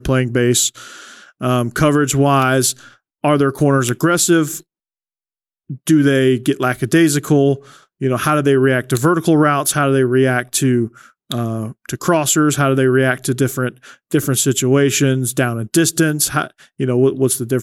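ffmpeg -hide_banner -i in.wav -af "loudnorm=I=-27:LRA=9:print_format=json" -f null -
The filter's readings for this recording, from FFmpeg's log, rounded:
"input_i" : "-15.7",
"input_tp" : "-2.0",
"input_lra" : "1.6",
"input_thresh" : "-26.1",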